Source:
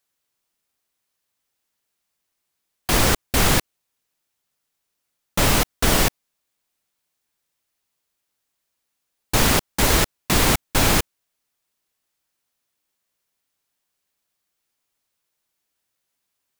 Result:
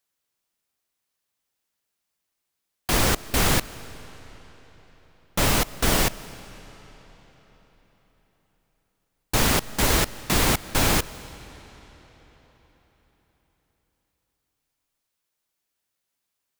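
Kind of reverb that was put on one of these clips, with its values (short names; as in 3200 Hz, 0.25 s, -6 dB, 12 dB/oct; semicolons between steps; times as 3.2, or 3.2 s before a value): digital reverb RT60 4.5 s, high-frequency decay 0.85×, pre-delay 0.11 s, DRR 17 dB; gain -3 dB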